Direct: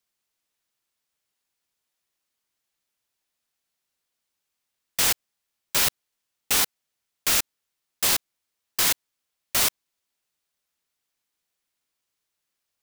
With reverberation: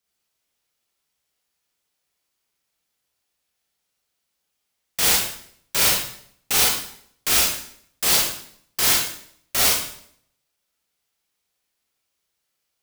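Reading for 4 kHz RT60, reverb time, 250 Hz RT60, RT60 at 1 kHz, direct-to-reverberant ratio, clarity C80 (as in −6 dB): 0.60 s, 0.65 s, 0.75 s, 0.60 s, −4.0 dB, 5.5 dB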